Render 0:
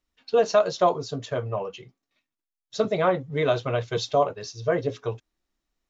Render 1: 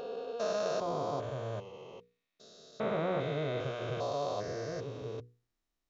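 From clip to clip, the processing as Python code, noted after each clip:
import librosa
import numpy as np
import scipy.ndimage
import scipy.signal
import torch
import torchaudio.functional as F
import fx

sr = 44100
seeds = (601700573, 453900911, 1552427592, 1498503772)

y = fx.spec_steps(x, sr, hold_ms=400)
y = fx.hum_notches(y, sr, base_hz=60, count=8)
y = F.gain(torch.from_numpy(y), -4.0).numpy()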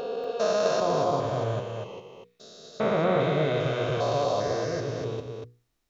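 y = x + 10.0 ** (-5.5 / 20.0) * np.pad(x, (int(240 * sr / 1000.0), 0))[:len(x)]
y = F.gain(torch.from_numpy(y), 8.0).numpy()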